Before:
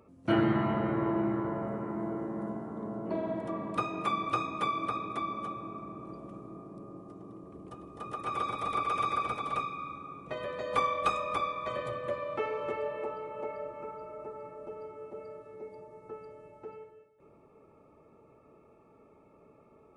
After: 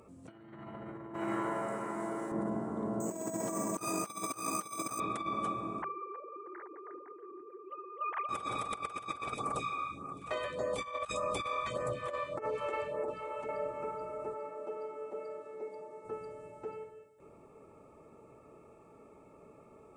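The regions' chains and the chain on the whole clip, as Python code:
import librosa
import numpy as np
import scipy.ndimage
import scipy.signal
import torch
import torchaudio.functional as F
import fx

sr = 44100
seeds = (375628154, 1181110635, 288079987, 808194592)

y = fx.chain(x, sr, fx.tilt_eq(slope=4.0),
    fx.quant_float(bits=6), at=(1.14, 2.32))
y = fx.chain(y, sr, fx.highpass(hz=130.0, slope=12),
    fx.resample_bad(factor=6, down='filtered', up='hold'), at=(3.0, 5.0))
y = fx.chain(y, sr, fx.sine_speech(),
    fx.echo_wet_lowpass(ms=317, feedback_pct=46, hz=2500.0, wet_db=-16.5), at=(5.82, 8.29))
y = fx.chain(y, sr, fx.echo_single(ms=711, db=-18.0),
    fx.phaser_stages(stages=2, low_hz=140.0, high_hz=3600.0, hz=1.7, feedback_pct=5), at=(9.34, 13.49))
y = fx.chain(y, sr, fx.highpass(hz=280.0, slope=12),
    fx.high_shelf(hz=7900.0, db=-9.0), at=(14.34, 16.05))
y = fx.peak_eq(y, sr, hz=8000.0, db=12.0, octaves=0.55)
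y = fx.hum_notches(y, sr, base_hz=50, count=7)
y = fx.over_compress(y, sr, threshold_db=-36.0, ratio=-0.5)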